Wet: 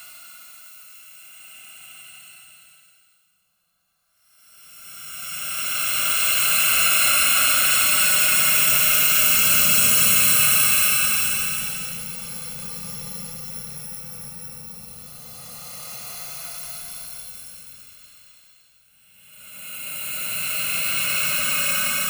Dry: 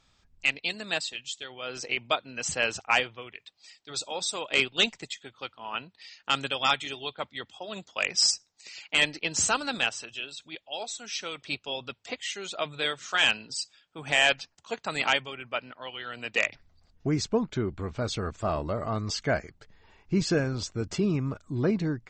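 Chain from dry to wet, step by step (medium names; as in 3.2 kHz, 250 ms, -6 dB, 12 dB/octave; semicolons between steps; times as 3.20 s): bit-reversed sample order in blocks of 128 samples; Paulstretch 49×, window 0.05 s, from 8.82 s; trim +4.5 dB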